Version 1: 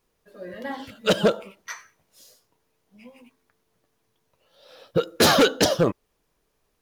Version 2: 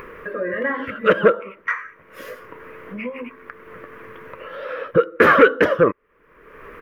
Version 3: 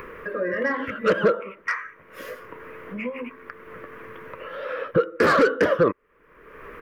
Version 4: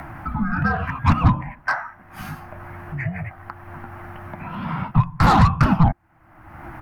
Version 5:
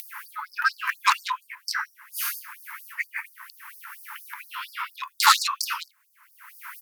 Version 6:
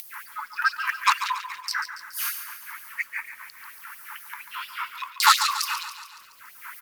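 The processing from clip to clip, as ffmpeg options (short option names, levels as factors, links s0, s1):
-filter_complex "[0:a]asplit=2[s0][s1];[s1]acompressor=threshold=0.0398:ratio=6,volume=0.794[s2];[s0][s2]amix=inputs=2:normalize=0,firequalizer=gain_entry='entry(110,0);entry(490,12);entry(760,-5);entry(1100,14);entry(2000,13);entry(4000,-18);entry(7600,-22);entry(12000,-13)':delay=0.05:min_phase=1,acompressor=mode=upward:threshold=0.251:ratio=2.5,volume=0.531"
-filter_complex "[0:a]acrossover=split=330|830[s0][s1][s2];[s2]asoftclip=type=tanh:threshold=0.15[s3];[s0][s1][s3]amix=inputs=3:normalize=0,alimiter=level_in=2.37:limit=0.891:release=50:level=0:latency=1,volume=0.376"
-af "afreqshift=-350,volume=1.58"
-af "crystalizer=i=8.5:c=0,highpass=f=530:t=q:w=4.9,afftfilt=real='re*gte(b*sr/1024,850*pow(4600/850,0.5+0.5*sin(2*PI*4.3*pts/sr)))':imag='im*gte(b*sr/1024,850*pow(4600/850,0.5+0.5*sin(2*PI*4.3*pts/sr)))':win_size=1024:overlap=0.75,volume=0.668"
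-filter_complex "[0:a]acrusher=bits=8:mix=0:aa=0.000001,asplit=2[s0][s1];[s1]aecho=0:1:141|282|423|564|705|846:0.299|0.167|0.0936|0.0524|0.0294|0.0164[s2];[s0][s2]amix=inputs=2:normalize=0"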